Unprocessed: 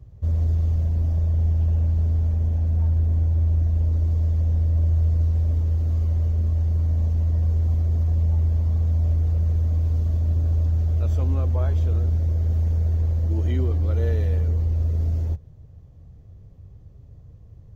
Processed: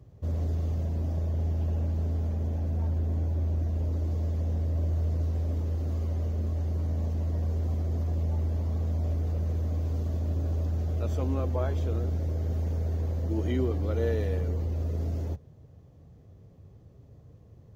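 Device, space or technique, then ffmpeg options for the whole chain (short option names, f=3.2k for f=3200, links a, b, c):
filter by subtraction: -filter_complex "[0:a]asplit=2[a][b];[b]lowpass=300,volume=-1[c];[a][c]amix=inputs=2:normalize=0"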